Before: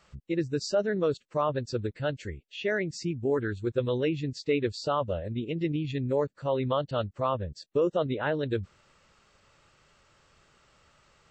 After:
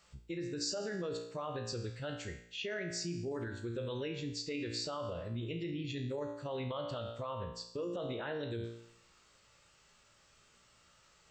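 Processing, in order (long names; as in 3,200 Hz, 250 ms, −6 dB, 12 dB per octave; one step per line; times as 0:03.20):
tuned comb filter 58 Hz, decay 0.69 s, harmonics all, mix 80%
brickwall limiter −34 dBFS, peak gain reduction 10.5 dB
high-shelf EQ 3,400 Hz +10 dB
level +2.5 dB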